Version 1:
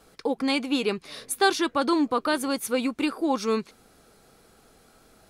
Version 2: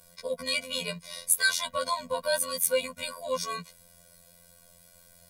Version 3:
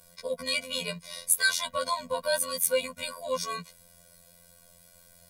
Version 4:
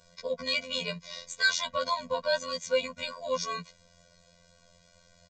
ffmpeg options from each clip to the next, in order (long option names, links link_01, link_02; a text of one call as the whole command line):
ffmpeg -i in.wav -af "aemphasis=mode=production:type=50fm,afftfilt=real='hypot(re,im)*cos(PI*b)':imag='0':win_size=2048:overlap=0.75,afftfilt=real='re*eq(mod(floor(b*sr/1024/230),2),0)':imag='im*eq(mod(floor(b*sr/1024/230),2),0)':win_size=1024:overlap=0.75,volume=2.5dB" out.wav
ffmpeg -i in.wav -af anull out.wav
ffmpeg -i in.wav -af "aresample=16000,aresample=44100" out.wav